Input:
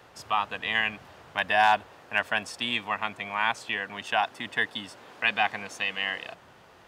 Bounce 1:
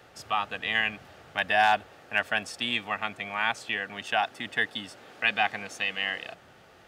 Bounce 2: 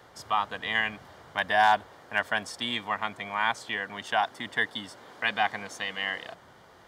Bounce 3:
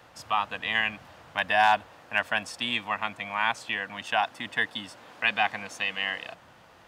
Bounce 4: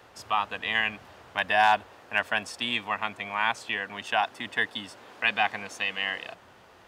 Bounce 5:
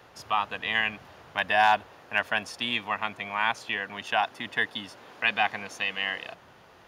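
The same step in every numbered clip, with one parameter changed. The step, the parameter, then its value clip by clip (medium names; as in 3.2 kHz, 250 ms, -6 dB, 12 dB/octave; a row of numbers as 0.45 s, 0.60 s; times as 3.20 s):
band-stop, frequency: 1 kHz, 2.6 kHz, 400 Hz, 150 Hz, 8 kHz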